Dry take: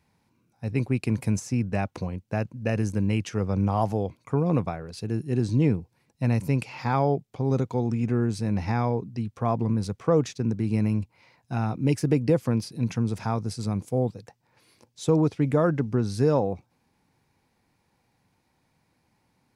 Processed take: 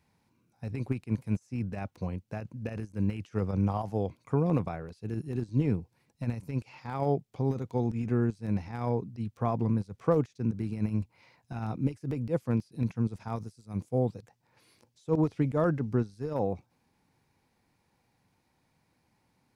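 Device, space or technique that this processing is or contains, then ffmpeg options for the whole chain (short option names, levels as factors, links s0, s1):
de-esser from a sidechain: -filter_complex "[0:a]asettb=1/sr,asplit=3[s0][s1][s2];[s0]atrim=end=13.364[s3];[s1]atrim=start=13.36:end=13.76,asetpts=PTS-STARTPTS,afade=t=in:d=0.004:c=qsin,afade=t=out:st=0.396:d=0.004:c=qsin,highshelf=f=6000:g=12[s4];[s2]atrim=start=13.756[s5];[s3][s4]acrossfade=d=0.004:c1=hsin:c2=qsin[s6];[s6][s5]acrossfade=d=0.004:c1=qsin:c2=hsin,asplit=2[s7][s8];[s8]highpass=f=4400:w=0.5412,highpass=f=4400:w=1.3066,apad=whole_len=862328[s9];[s7][s9]sidechaincompress=threshold=0.00141:ratio=20:attack=0.63:release=49,volume=0.75"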